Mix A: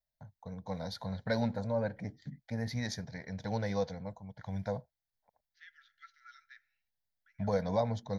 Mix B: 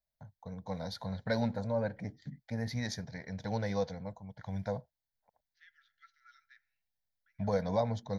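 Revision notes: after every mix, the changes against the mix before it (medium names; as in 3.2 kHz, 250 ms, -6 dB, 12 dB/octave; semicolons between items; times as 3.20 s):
second voice -5.5 dB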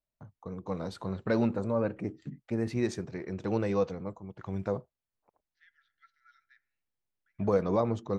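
first voice: remove static phaser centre 1.8 kHz, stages 8; master: add treble shelf 3.9 kHz -10.5 dB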